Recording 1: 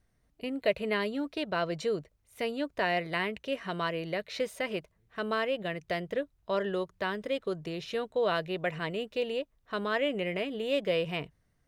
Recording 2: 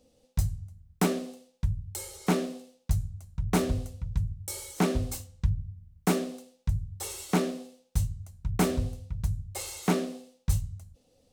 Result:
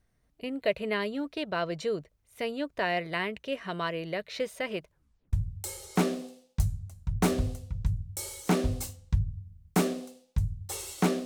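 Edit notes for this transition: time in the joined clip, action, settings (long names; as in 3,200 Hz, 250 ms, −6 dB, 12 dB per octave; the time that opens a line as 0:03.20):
recording 1
0:04.89: tape stop 0.44 s
0:05.33: continue with recording 2 from 0:01.64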